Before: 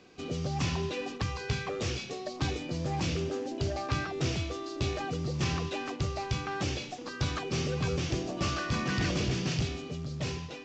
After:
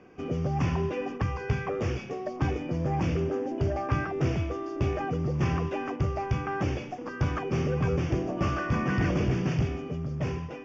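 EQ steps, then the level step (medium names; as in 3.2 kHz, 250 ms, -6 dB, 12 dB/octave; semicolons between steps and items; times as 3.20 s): boxcar filter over 11 samples; +4.5 dB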